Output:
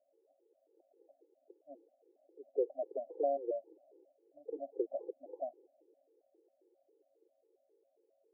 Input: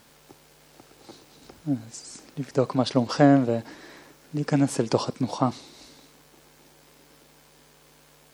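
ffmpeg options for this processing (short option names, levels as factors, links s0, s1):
-af "asuperpass=centerf=480:order=12:qfactor=1.3,afftfilt=real='re*gt(sin(2*PI*3.7*pts/sr)*(1-2*mod(floor(b*sr/1024/270),2)),0)':imag='im*gt(sin(2*PI*3.7*pts/sr)*(1-2*mod(floor(b*sr/1024/270),2)),0)':win_size=1024:overlap=0.75,volume=0.422"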